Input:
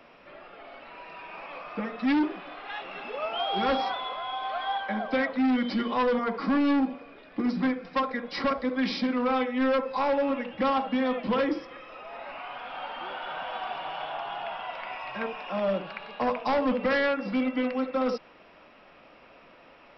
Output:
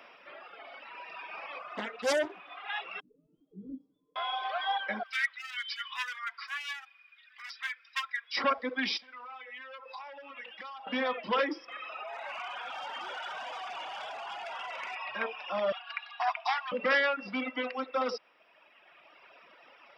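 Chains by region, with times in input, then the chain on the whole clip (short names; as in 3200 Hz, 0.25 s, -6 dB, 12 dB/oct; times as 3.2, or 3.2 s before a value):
1.59–2.5 companded quantiser 8-bit + air absorption 100 m + Doppler distortion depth 1 ms
3–4.16 inverse Chebyshev low-pass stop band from 690 Hz, stop band 50 dB + comb 6.6 ms, depth 99%
5.03–8.37 hard clip -22 dBFS + HPF 1500 Hz 24 dB/oct
8.97–10.87 HPF 1200 Hz 6 dB/oct + compressor 16:1, threshold -39 dBFS
11.68–14.95 hard clip -34.5 dBFS + air absorption 59 m + fast leveller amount 70%
15.72–16.72 Chebyshev high-pass 660 Hz, order 8 + notch 980 Hz, Q 22 + comb 4.2 ms, depth 50%
whole clip: notch 4200 Hz, Q 9.1; reverb removal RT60 2 s; HPF 1000 Hz 6 dB/oct; gain +4 dB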